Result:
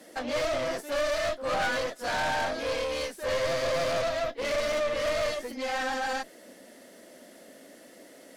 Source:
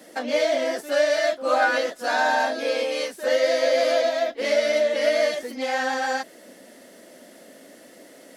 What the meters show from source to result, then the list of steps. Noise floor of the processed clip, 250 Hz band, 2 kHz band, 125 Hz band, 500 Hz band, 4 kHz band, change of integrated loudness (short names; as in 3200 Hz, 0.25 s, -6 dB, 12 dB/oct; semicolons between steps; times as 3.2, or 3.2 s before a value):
-52 dBFS, -5.5 dB, -6.5 dB, n/a, -7.5 dB, -5.0 dB, -6.5 dB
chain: added harmonics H 4 -10 dB, 6 -18 dB, 8 -21 dB, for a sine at -8.5 dBFS; soft clip -20.5 dBFS, distortion -9 dB; gain -3.5 dB